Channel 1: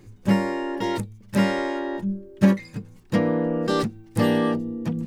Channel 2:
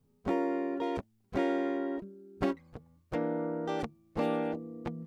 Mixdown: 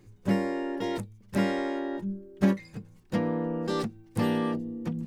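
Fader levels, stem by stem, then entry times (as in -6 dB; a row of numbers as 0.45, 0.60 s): -7.0, -5.0 dB; 0.00, 0.00 s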